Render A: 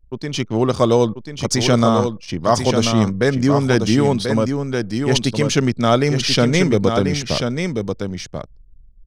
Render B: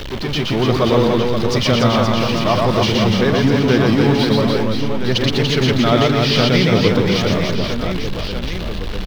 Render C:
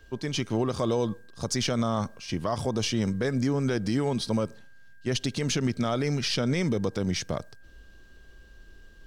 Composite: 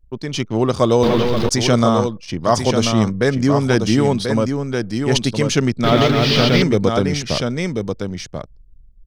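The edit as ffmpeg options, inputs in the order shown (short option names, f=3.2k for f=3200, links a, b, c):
-filter_complex "[1:a]asplit=2[a][b];[0:a]asplit=3[c][d][e];[c]atrim=end=1.032[f];[a]atrim=start=1.028:end=1.492[g];[d]atrim=start=1.488:end=5.842[h];[b]atrim=start=5.838:end=6.622[i];[e]atrim=start=6.618[j];[f][g]acrossfade=d=0.004:c1=hsin:c2=hsin[k];[k][h]acrossfade=d=0.004:c1=hsin:c2=hsin[l];[l][i]acrossfade=d=0.004:c1=hsin:c2=hsin[m];[m][j]acrossfade=d=0.004:c1=hsin:c2=hsin"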